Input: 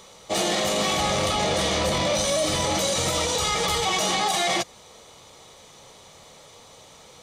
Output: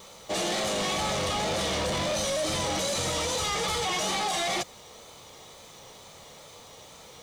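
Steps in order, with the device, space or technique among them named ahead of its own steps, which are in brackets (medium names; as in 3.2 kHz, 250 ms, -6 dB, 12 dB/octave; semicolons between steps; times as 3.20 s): compact cassette (saturation -25 dBFS, distortion -10 dB; low-pass 11 kHz 12 dB/octave; wow and flutter; white noise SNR 31 dB)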